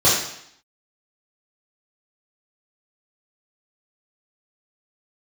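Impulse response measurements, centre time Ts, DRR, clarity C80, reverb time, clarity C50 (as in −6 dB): 52 ms, −9.0 dB, 5.5 dB, 0.70 s, 2.0 dB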